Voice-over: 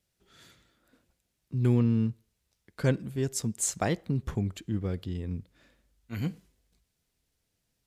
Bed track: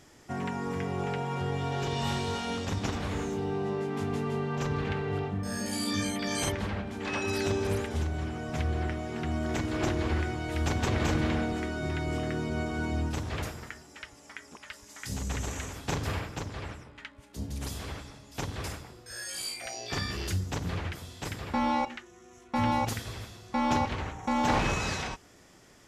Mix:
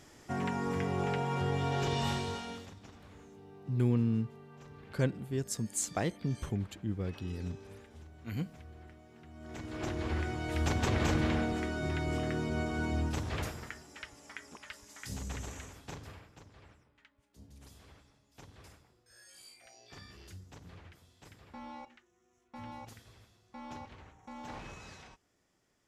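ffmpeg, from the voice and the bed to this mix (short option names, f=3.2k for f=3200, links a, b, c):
-filter_complex "[0:a]adelay=2150,volume=-4.5dB[a];[1:a]volume=19dB,afade=t=out:st=1.92:d=0.82:silence=0.0891251,afade=t=in:st=9.34:d=1.18:silence=0.105925,afade=t=out:st=14.47:d=1.7:silence=0.141254[b];[a][b]amix=inputs=2:normalize=0"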